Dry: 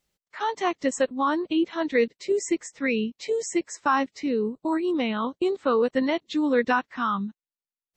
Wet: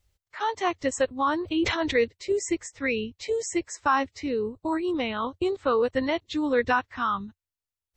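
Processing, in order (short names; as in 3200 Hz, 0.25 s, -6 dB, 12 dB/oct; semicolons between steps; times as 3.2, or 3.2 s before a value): resonant low shelf 130 Hz +12.5 dB, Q 3; 1.44–1.99 sustainer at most 44 dB/s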